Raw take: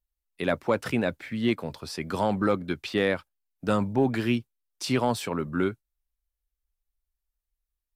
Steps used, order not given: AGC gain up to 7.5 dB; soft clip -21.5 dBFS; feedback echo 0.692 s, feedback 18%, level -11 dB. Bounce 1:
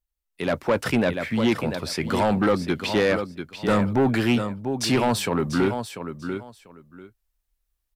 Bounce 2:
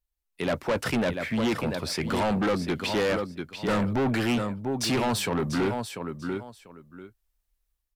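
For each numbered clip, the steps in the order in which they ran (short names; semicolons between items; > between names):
feedback echo > soft clip > AGC; AGC > feedback echo > soft clip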